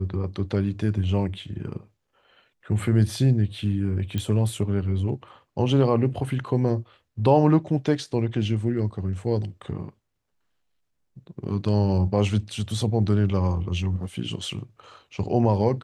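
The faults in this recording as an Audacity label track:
4.180000	4.180000	pop -15 dBFS

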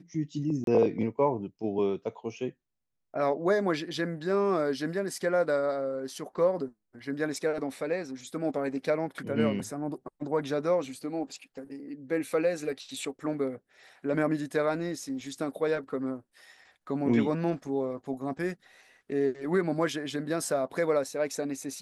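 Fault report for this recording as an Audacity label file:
0.640000	0.670000	gap 32 ms

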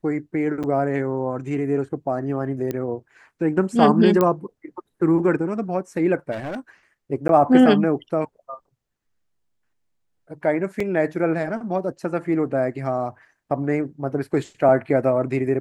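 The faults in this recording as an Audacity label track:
0.630000	0.640000	gap 6.8 ms
2.710000	2.710000	pop -14 dBFS
4.210000	4.210000	pop -7 dBFS
6.310000	6.600000	clipped -26 dBFS
7.280000	7.290000	gap 12 ms
10.800000	10.800000	gap 4 ms

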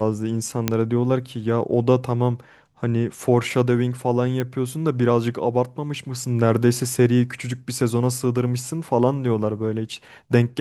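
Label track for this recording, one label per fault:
0.680000	0.680000	pop -4 dBFS
4.400000	4.400000	pop -12 dBFS

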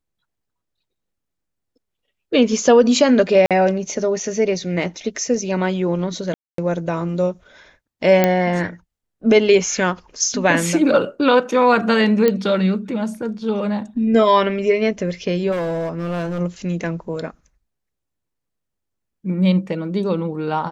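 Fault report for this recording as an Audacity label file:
3.460000	3.510000	gap 47 ms
6.340000	6.580000	gap 0.243 s
8.240000	8.240000	pop -2 dBFS
12.280000	12.280000	pop -5 dBFS
15.510000	16.410000	clipped -19.5 dBFS

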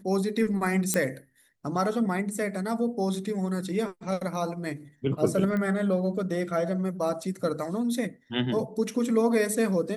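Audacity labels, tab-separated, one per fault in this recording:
0.940000	0.940000	pop -9 dBFS
5.570000	5.570000	pop -20 dBFS

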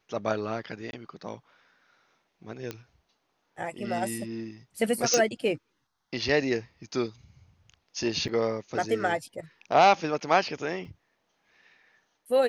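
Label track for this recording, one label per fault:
0.910000	0.930000	gap 21 ms
2.710000	2.710000	pop -19 dBFS
5.140000	5.140000	pop
8.280000	8.290000	gap 6.6 ms
10.850000	10.850000	gap 2.3 ms

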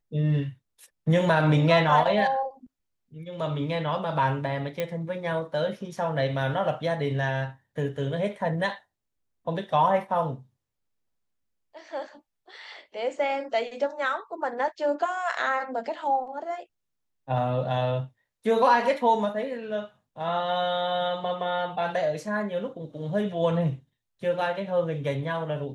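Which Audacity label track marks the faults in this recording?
4.800000	4.800000	pop -15 dBFS

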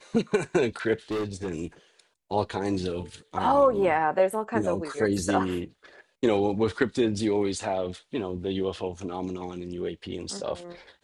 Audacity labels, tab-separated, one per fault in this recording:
1.110000	1.490000	clipped -26 dBFS

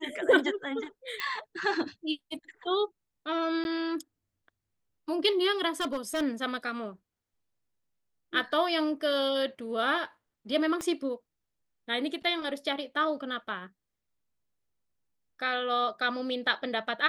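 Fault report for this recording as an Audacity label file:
1.200000	1.200000	pop -18 dBFS
3.640000	3.650000	gap 11 ms
5.800000	6.230000	clipped -26.5 dBFS
10.810000	10.810000	pop -20 dBFS

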